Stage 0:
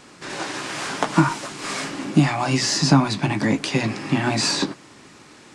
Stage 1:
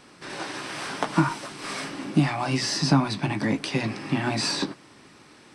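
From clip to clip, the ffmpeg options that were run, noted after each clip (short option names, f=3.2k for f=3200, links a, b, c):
-af "bandreject=f=6.9k:w=5.2,volume=-4.5dB"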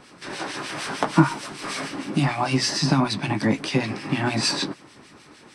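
-filter_complex "[0:a]acrossover=split=1700[a][b];[a]aeval=exprs='val(0)*(1-0.7/2+0.7/2*cos(2*PI*6.6*n/s))':c=same[c];[b]aeval=exprs='val(0)*(1-0.7/2-0.7/2*cos(2*PI*6.6*n/s))':c=same[d];[c][d]amix=inputs=2:normalize=0,volume=6dB"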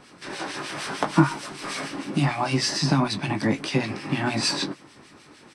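-filter_complex "[0:a]asplit=2[a][b];[b]adelay=21,volume=-13dB[c];[a][c]amix=inputs=2:normalize=0,volume=-1.5dB"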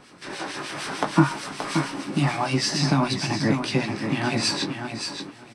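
-af "aecho=1:1:576|1152|1728:0.447|0.0715|0.0114"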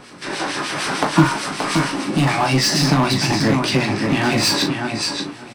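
-filter_complex "[0:a]asplit=2[a][b];[b]aeval=exprs='0.0708*(abs(mod(val(0)/0.0708+3,4)-2)-1)':c=same,volume=-3.5dB[c];[a][c]amix=inputs=2:normalize=0,asplit=2[d][e];[e]adelay=38,volume=-9.5dB[f];[d][f]amix=inputs=2:normalize=0,volume=4dB"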